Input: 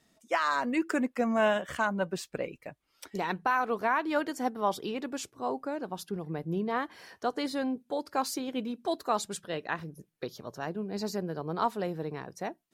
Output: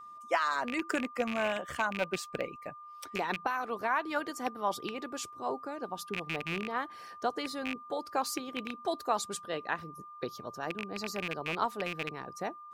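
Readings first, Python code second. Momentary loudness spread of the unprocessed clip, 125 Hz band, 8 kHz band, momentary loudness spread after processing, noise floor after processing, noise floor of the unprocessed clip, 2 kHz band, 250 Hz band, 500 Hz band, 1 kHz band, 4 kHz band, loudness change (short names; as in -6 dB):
11 LU, -6.0 dB, -0.5 dB, 8 LU, -49 dBFS, -73 dBFS, -0.5 dB, -6.0 dB, -3.5 dB, -2.0 dB, +0.5 dB, -2.5 dB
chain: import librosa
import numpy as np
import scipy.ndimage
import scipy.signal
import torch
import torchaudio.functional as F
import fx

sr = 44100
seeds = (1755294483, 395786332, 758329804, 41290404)

y = fx.rattle_buzz(x, sr, strikes_db=-36.0, level_db=-22.0)
y = fx.hpss(y, sr, part='harmonic', gain_db=-7)
y = y + 10.0 ** (-46.0 / 20.0) * np.sin(2.0 * np.pi * 1200.0 * np.arange(len(y)) / sr)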